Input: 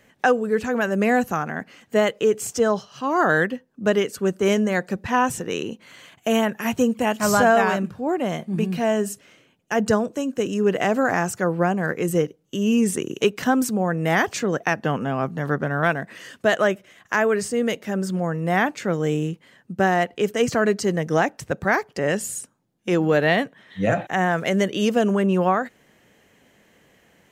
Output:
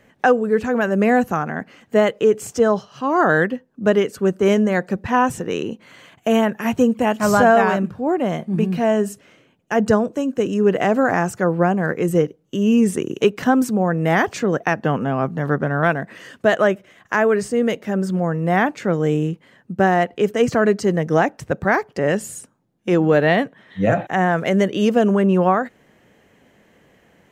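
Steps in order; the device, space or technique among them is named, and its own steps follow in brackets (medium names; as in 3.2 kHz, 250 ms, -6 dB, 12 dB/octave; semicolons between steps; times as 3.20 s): behind a face mask (treble shelf 2.4 kHz -8 dB); trim +4 dB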